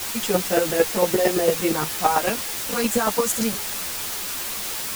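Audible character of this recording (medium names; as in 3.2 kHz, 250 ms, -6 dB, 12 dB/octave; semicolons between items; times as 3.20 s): chopped level 8.8 Hz, depth 65%, duty 10%; a quantiser's noise floor 6-bit, dither triangular; a shimmering, thickened sound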